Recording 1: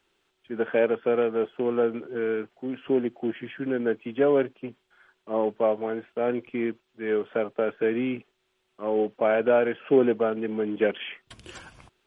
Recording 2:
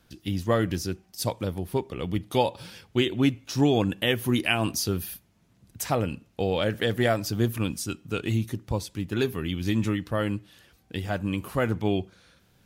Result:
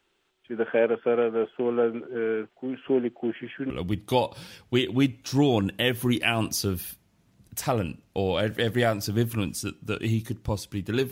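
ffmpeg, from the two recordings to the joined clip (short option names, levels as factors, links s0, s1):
-filter_complex "[0:a]apad=whole_dur=11.11,atrim=end=11.11,atrim=end=3.702[s0];[1:a]atrim=start=1.928:end=9.34[s1];[s0][s1]acrossfade=d=0.004:c1=hsin:c2=hsin"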